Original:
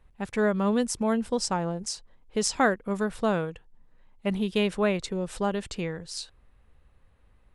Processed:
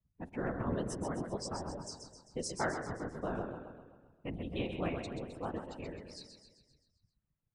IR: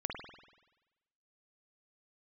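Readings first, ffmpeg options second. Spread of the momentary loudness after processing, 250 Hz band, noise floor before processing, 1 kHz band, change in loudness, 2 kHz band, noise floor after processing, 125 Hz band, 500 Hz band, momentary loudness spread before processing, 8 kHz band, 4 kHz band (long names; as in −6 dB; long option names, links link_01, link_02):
13 LU, −12.0 dB, −61 dBFS, −10.5 dB, −11.5 dB, −12.0 dB, −84 dBFS, −7.0 dB, −12.0 dB, 11 LU, −13.0 dB, −13.0 dB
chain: -filter_complex "[0:a]aeval=exprs='val(0)*sin(2*PI*65*n/s)':channel_layout=same,asplit=2[link_01][link_02];[1:a]atrim=start_sample=2205[link_03];[link_02][link_03]afir=irnorm=-1:irlink=0,volume=-7.5dB[link_04];[link_01][link_04]amix=inputs=2:normalize=0,afftdn=noise_reduction=17:noise_floor=-37,aecho=1:1:131|262|393|524|655|786|917:0.447|0.246|0.135|0.0743|0.0409|0.0225|0.0124,afftfilt=real='hypot(re,im)*cos(2*PI*random(0))':imag='hypot(re,im)*sin(2*PI*random(1))':win_size=512:overlap=0.75,volume=-6.5dB"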